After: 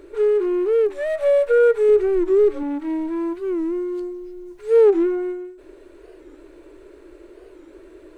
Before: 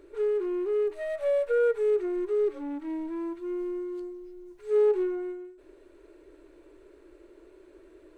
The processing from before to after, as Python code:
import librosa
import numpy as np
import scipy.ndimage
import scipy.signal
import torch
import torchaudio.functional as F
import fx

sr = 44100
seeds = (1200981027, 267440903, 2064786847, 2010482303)

y = fx.low_shelf(x, sr, hz=160.0, db=10.0, at=(1.89, 2.63))
y = fx.record_warp(y, sr, rpm=45.0, depth_cents=160.0)
y = y * librosa.db_to_amplitude(9.0)